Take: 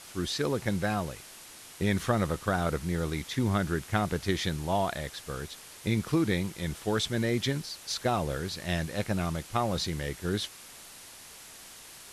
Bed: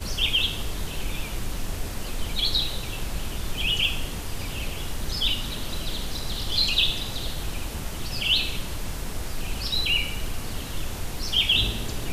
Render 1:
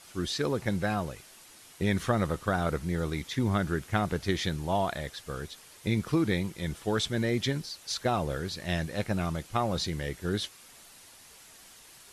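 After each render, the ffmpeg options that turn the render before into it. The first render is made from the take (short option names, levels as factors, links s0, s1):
-af "afftdn=nr=6:nf=-49"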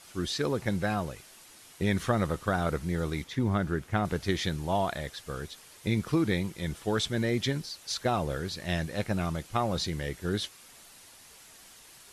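-filter_complex "[0:a]asettb=1/sr,asplit=3[s0][s1][s2];[s0]atrim=end=3.244[s3];[s1]atrim=start=3.24:end=4.05,asetpts=PTS-STARTPTS,afade=t=in:d=0.004:c=qsin,afade=t=out:st=0.806:d=0.004:c=qsin,highshelf=f=2600:g=-7[s4];[s2]atrim=start=4.046[s5];[s3][s4]acrossfade=d=0.004:c1=hsin:c2=qsin[s6];[s6][s5]acrossfade=d=0.004:c1=qsin:c2=hsin"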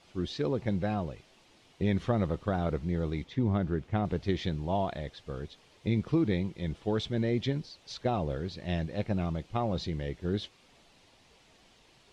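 -af "lowpass=3100,equalizer=f=1500:t=o:w=1.2:g=-9.5"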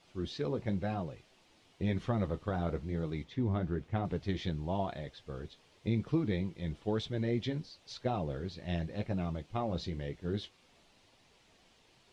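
-af "flanger=delay=6.3:depth=6.6:regen=-51:speed=0.98:shape=triangular"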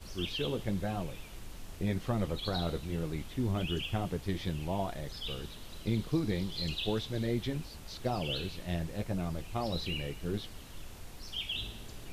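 -filter_complex "[1:a]volume=0.158[s0];[0:a][s0]amix=inputs=2:normalize=0"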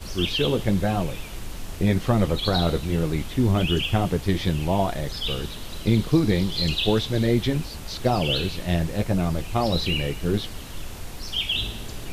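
-af "volume=3.76"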